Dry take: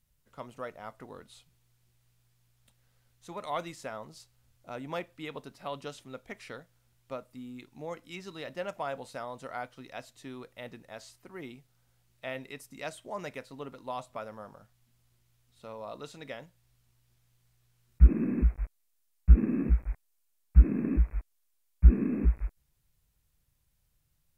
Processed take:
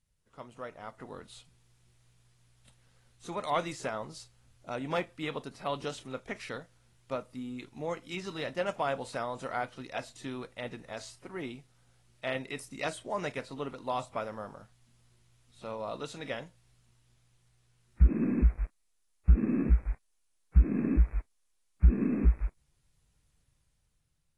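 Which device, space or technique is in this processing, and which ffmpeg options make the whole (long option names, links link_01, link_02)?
low-bitrate web radio: -af "dynaudnorm=framelen=190:gausssize=11:maxgain=8dB,alimiter=limit=-8dB:level=0:latency=1:release=184,volume=-4dB" -ar 24000 -c:a aac -b:a 32k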